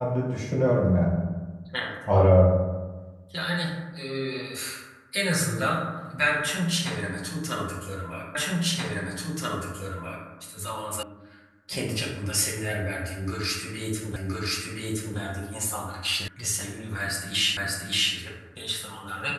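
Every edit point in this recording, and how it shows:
8.35 repeat of the last 1.93 s
11.03 sound cut off
14.16 repeat of the last 1.02 s
16.28 sound cut off
17.57 repeat of the last 0.58 s

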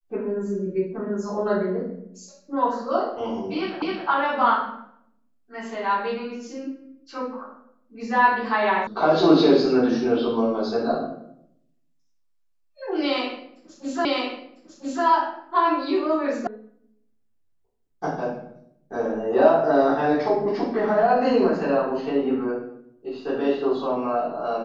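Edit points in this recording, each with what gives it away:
3.82 repeat of the last 0.26 s
8.87 sound cut off
14.05 repeat of the last 1 s
16.47 sound cut off

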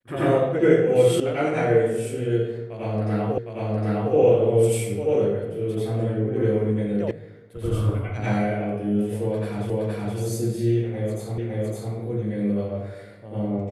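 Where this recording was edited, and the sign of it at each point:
1.2 sound cut off
3.38 repeat of the last 0.76 s
7.11 sound cut off
9.7 repeat of the last 0.47 s
11.38 repeat of the last 0.56 s

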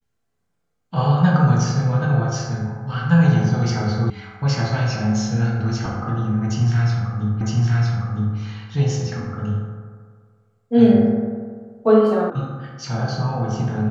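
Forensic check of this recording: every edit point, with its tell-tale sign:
4.1 sound cut off
7.41 repeat of the last 0.96 s
12.3 sound cut off

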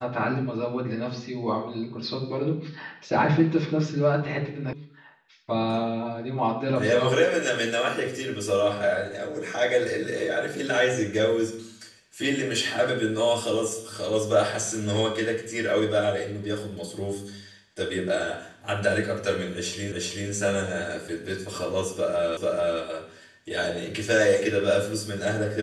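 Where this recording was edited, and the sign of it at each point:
4.73 sound cut off
19.92 repeat of the last 0.38 s
22.37 repeat of the last 0.44 s

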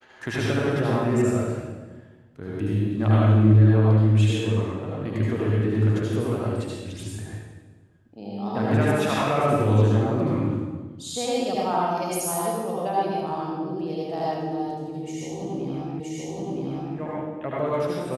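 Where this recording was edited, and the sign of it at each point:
16 repeat of the last 0.97 s

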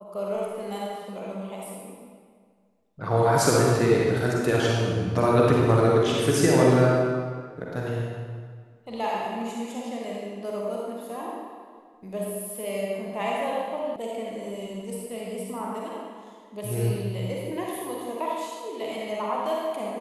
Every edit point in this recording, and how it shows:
13.96 sound cut off

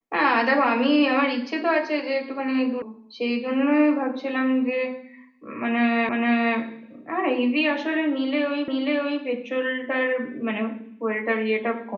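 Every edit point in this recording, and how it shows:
2.82 sound cut off
6.09 repeat of the last 0.48 s
8.68 repeat of the last 0.54 s

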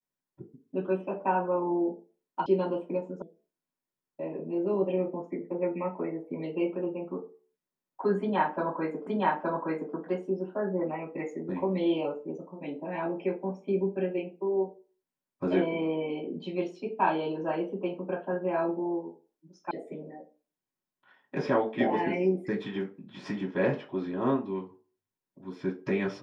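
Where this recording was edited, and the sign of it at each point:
2.46 sound cut off
3.22 sound cut off
9.07 repeat of the last 0.87 s
19.71 sound cut off

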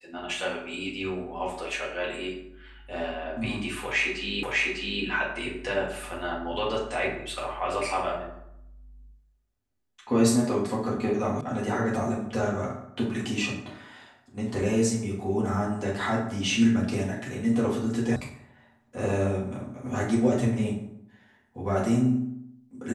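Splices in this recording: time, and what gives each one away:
4.43 repeat of the last 0.6 s
11.41 sound cut off
18.16 sound cut off

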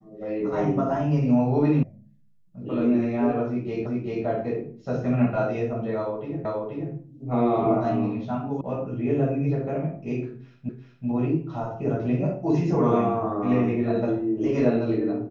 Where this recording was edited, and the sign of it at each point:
1.83 sound cut off
3.86 repeat of the last 0.39 s
6.45 repeat of the last 0.48 s
8.61 sound cut off
10.69 repeat of the last 0.38 s

